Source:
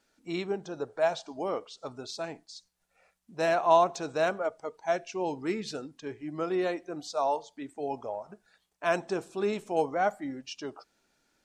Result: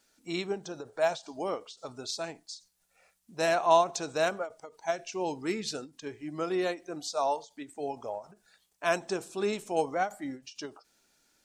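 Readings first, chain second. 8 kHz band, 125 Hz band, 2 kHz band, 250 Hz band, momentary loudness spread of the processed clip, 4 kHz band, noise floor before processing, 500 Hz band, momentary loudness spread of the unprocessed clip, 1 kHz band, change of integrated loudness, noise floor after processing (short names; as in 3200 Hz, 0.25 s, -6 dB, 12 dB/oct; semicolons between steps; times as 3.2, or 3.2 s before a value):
+5.5 dB, -1.5 dB, 0.0 dB, -1.5 dB, 14 LU, +3.0 dB, -75 dBFS, -1.5 dB, 14 LU, -1.0 dB, -1.0 dB, -72 dBFS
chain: high shelf 4000 Hz +10.5 dB; ending taper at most 240 dB/s; gain -1 dB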